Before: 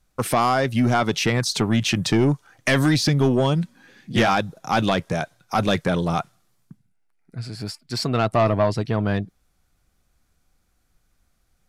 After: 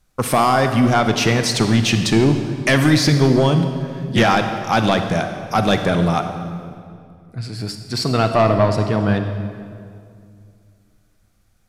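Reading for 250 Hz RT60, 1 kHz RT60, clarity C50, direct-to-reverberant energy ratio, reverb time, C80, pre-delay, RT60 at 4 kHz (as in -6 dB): 2.8 s, 2.1 s, 7.0 dB, 6.5 dB, 2.3 s, 8.0 dB, 33 ms, 1.7 s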